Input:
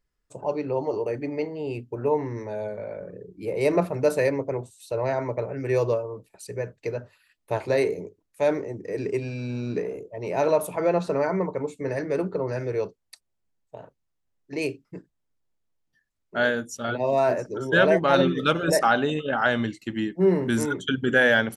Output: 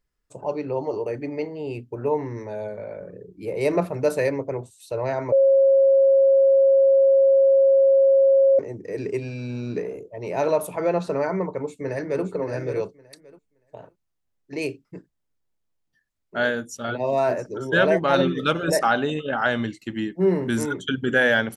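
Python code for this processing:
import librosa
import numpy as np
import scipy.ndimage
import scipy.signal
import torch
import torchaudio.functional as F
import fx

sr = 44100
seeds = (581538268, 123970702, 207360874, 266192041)

y = fx.echo_throw(x, sr, start_s=11.5, length_s=0.74, ms=570, feedback_pct=15, wet_db=-7.0)
y = fx.edit(y, sr, fx.bleep(start_s=5.32, length_s=3.27, hz=543.0, db=-12.5), tone=tone)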